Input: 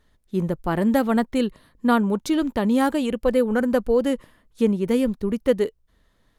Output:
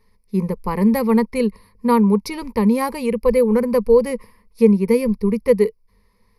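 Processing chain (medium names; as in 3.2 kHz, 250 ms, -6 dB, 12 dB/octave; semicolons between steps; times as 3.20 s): rippled EQ curve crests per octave 0.87, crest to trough 18 dB; trim -1 dB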